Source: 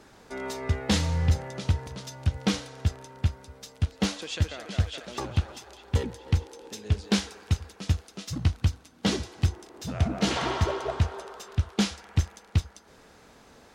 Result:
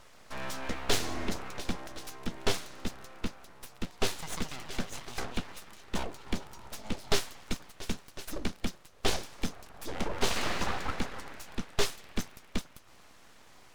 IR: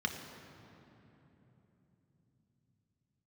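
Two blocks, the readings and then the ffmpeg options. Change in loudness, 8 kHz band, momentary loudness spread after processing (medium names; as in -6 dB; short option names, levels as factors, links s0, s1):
-7.0 dB, -1.0 dB, 12 LU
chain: -af "highpass=f=120:w=0.5412,highpass=f=120:w=1.3066,aeval=exprs='abs(val(0))':c=same"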